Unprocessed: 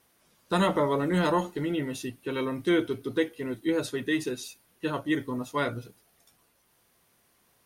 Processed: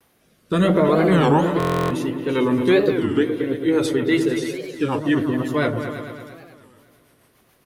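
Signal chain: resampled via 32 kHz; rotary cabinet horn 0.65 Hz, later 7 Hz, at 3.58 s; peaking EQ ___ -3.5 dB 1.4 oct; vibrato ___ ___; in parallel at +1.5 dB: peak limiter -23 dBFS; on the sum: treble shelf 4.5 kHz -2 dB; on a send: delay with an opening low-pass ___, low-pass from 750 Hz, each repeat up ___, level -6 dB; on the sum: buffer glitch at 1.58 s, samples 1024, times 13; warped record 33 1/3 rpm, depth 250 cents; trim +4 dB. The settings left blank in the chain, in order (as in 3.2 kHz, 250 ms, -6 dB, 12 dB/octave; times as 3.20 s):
6.4 kHz, 1.5 Hz, 89 cents, 112 ms, 2 oct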